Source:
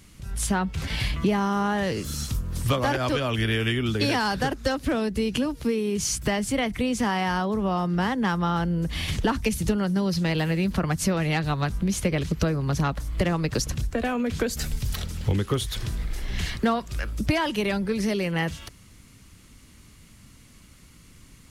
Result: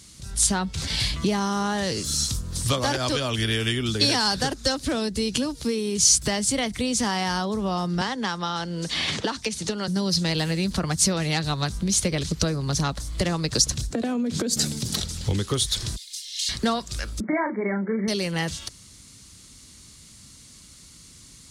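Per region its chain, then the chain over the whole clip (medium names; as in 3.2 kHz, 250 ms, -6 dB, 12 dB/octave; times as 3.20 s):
8.01–9.88 s: high-pass 420 Hz 6 dB/octave + distance through air 63 m + three bands compressed up and down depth 100%
13.90–15.00 s: high-pass 140 Hz + peaking EQ 240 Hz +13 dB 2.4 oct + compression 10:1, threshold -21 dBFS
15.96–16.49 s: inverse Chebyshev high-pass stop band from 510 Hz, stop band 80 dB + comb 2.8 ms, depth 75%
17.20–18.08 s: brick-wall FIR band-pass 170–2300 Hz + doubling 36 ms -6.5 dB
whole clip: high-pass 42 Hz; high-order bell 5.9 kHz +11.5 dB; trim -1 dB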